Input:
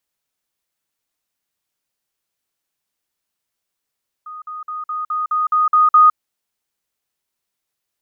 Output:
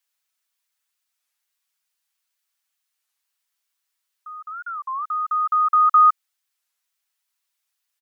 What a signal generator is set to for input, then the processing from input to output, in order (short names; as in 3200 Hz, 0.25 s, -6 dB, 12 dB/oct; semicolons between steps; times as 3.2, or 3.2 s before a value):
level ladder 1240 Hz -30 dBFS, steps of 3 dB, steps 9, 0.16 s 0.05 s
HPF 1100 Hz 12 dB/oct; comb 6.2 ms; record warp 33 1/3 rpm, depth 250 cents